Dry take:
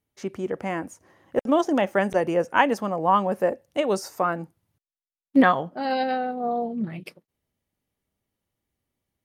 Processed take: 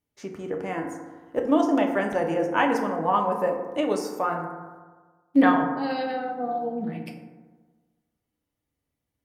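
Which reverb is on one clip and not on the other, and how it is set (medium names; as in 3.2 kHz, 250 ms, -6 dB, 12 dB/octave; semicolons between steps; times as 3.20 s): FDN reverb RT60 1.4 s, low-frequency decay 1×, high-frequency decay 0.35×, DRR 1.5 dB; trim -4 dB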